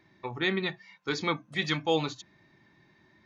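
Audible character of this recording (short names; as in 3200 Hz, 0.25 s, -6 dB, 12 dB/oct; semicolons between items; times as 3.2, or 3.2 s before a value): noise floor -64 dBFS; spectral tilt -3.0 dB/oct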